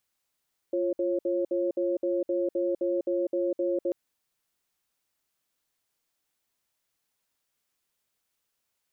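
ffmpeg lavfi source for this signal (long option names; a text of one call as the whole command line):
ffmpeg -f lavfi -i "aevalsrc='0.0447*(sin(2*PI*348*t)+sin(2*PI*545*t))*clip(min(mod(t,0.26),0.2-mod(t,0.26))/0.005,0,1)':duration=3.19:sample_rate=44100" out.wav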